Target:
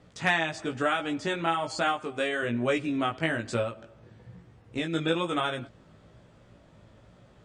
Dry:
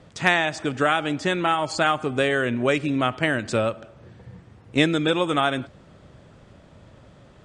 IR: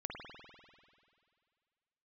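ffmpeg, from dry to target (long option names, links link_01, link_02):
-filter_complex "[0:a]asettb=1/sr,asplit=3[link_01][link_02][link_03];[link_01]atrim=end=1.924[link_04];[link_02]atrim=start=1.92:end=2.43,asetpts=PTS-STARTPTS,afade=type=in:duration=0.004:curve=qsin,afade=type=out:start_time=0.506:duration=0.004:curve=qsin,lowshelf=frequency=240:gain=-10[link_05];[link_03]atrim=start=2.426[link_06];[link_04][link_05]acrossfade=duration=0.004:curve1=hsin:curve2=qsin[link_07];[link_07][link_06]acrossfade=duration=0.004:curve1=qsin:curve2=hsin,asplit=3[link_08][link_09][link_10];[link_08]afade=type=out:start_time=3.62:duration=0.02[link_11];[link_09]acompressor=threshold=-23dB:ratio=3,afade=type=in:start_time=3.62:duration=0.02,afade=type=out:start_time=4.92:duration=0.02[link_12];[link_10]afade=type=in:start_time=4.92:duration=0.02[link_13];[link_11][link_12][link_13]amix=inputs=3:normalize=0,flanger=delay=16.5:depth=2.1:speed=1.1,volume=-3dB"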